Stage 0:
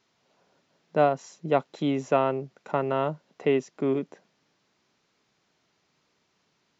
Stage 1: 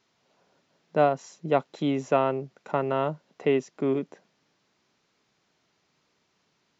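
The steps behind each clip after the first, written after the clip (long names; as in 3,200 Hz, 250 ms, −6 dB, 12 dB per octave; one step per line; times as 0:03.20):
no processing that can be heard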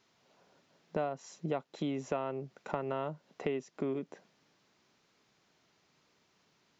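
downward compressor 4 to 1, threshold −33 dBFS, peak gain reduction 14.5 dB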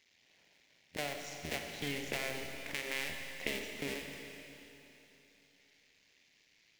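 sub-harmonics by changed cycles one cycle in 2, muted
high shelf with overshoot 1,600 Hz +8.5 dB, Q 3
four-comb reverb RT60 3.3 s, combs from 28 ms, DRR 2.5 dB
level −5 dB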